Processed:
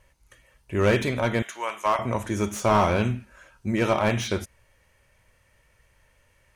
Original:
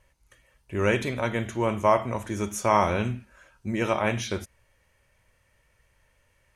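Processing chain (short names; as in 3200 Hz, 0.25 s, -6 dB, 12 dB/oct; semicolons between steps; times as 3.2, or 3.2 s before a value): 1.42–1.99 HPF 1000 Hz 12 dB/oct; slew limiter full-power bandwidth 110 Hz; gain +3.5 dB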